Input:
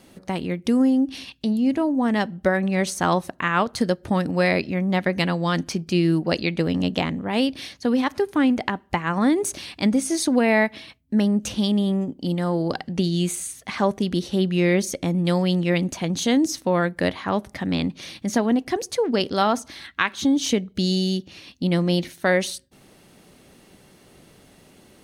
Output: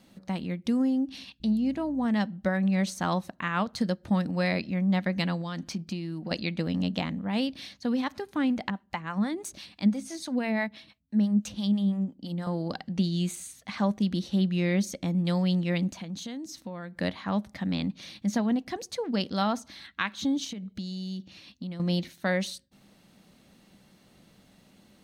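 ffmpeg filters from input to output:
-filter_complex "[0:a]asettb=1/sr,asplit=3[s0][s1][s2];[s0]atrim=end=1.404[s3];[s1]atrim=start=1.4:end=2.06,asetpts=PTS-STARTPTS,afade=t=in:d=0.004:c=qsin,afade=t=out:st=0.656:d=0.004:c=qsin,aeval=exprs='val(0)+0.00708*(sin(2*PI*60*n/s)+sin(2*PI*2*60*n/s)/2+sin(2*PI*3*60*n/s)/3+sin(2*PI*4*60*n/s)/4+sin(2*PI*5*60*n/s)/5)':c=same[s4];[s2]atrim=start=2.056[s5];[s3][s4]acrossfade=d=0.004:c1=hsin:c2=qsin[s6];[s6][s5]acrossfade=d=0.004:c1=qsin:c2=hsin,asettb=1/sr,asplit=3[s7][s8][s9];[s7]atrim=end=5.414[s10];[s8]atrim=start=5.41:end=6.31,asetpts=PTS-STARTPTS,afade=t=in:d=0.004:c=qsin,afade=t=out:st=0.896:d=0.004:c=qsin,acompressor=threshold=0.0708:ratio=6:attack=3.2:release=140:knee=1:detection=peak[s11];[s9]atrim=start=6.306[s12];[s10][s11]acrossfade=d=0.004:c1=hsin:c2=qsin[s13];[s13][s12]acrossfade=d=0.004:c1=qsin:c2=hsin,asettb=1/sr,asplit=3[s14][s15][s16];[s14]atrim=end=8.704[s17];[s15]atrim=start=8.7:end=12.47,asetpts=PTS-STARTPTS,afade=t=in:d=0.004:c=qsin,afade=t=out:st=3.766:d=0.004:c=qsin,acrossover=split=550[s18][s19];[s18]aeval=exprs='val(0)*(1-0.7/2+0.7/2*cos(2*PI*6*n/s))':c=same[s20];[s19]aeval=exprs='val(0)*(1-0.7/2-0.7/2*cos(2*PI*6*n/s))':c=same[s21];[s20][s21]amix=inputs=2:normalize=0[s22];[s16]atrim=start=12.466[s23];[s17][s22]acrossfade=d=0.004:c1=hsin:c2=qsin[s24];[s24][s23]acrossfade=d=0.004:c1=qsin:c2=hsin,asettb=1/sr,asplit=3[s25][s26][s27];[s25]atrim=end=15.914[s28];[s26]atrim=start=15.91:end=16.95,asetpts=PTS-STARTPTS,afade=t=in:d=0.004:c=qsin,afade=t=out:st=1.036:d=0.004:c=qsin,acompressor=threshold=0.0251:ratio=2.5:attack=3.2:release=140:knee=1:detection=peak[s29];[s27]atrim=start=16.946[s30];[s28][s29]acrossfade=d=0.004:c1=hsin:c2=qsin[s31];[s31][s30]acrossfade=d=0.004:c1=qsin:c2=hsin,asettb=1/sr,asplit=3[s32][s33][s34];[s32]atrim=end=20.444[s35];[s33]atrim=start=20.44:end=21.8,asetpts=PTS-STARTPTS,afade=t=in:d=0.004:c=qsin,afade=t=out:st=1.356:d=0.004:c=qsin,acompressor=threshold=0.0447:ratio=12:attack=3.2:release=140:knee=1:detection=peak[s36];[s34]atrim=start=21.796[s37];[s35][s36]acrossfade=d=0.004:c1=hsin:c2=qsin[s38];[s38][s37]acrossfade=d=0.004:c1=qsin:c2=hsin,equalizer=f=200:t=o:w=0.33:g=8,equalizer=f=400:t=o:w=0.33:g=-7,equalizer=f=4000:t=o:w=0.33:g=4,equalizer=f=10000:t=o:w=0.33:g=-6,volume=0.398"

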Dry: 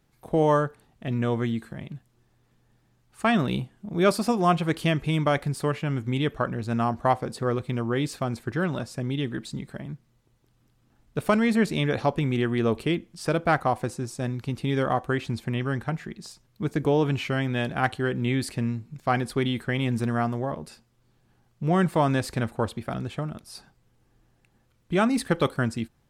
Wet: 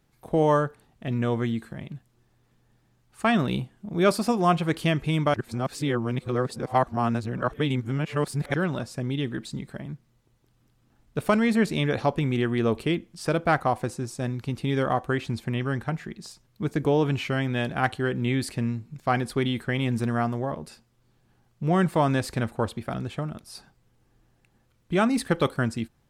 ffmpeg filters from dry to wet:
-filter_complex "[0:a]asplit=3[s0][s1][s2];[s0]atrim=end=5.342[s3];[s1]atrim=start=5.338:end=8.542,asetpts=PTS-STARTPTS,areverse[s4];[s2]atrim=start=8.538[s5];[s3][s4]acrossfade=d=0.004:c1=hsin:c2=hsin[s6];[s6][s5]acrossfade=d=0.004:c1=hsin:c2=hsin"

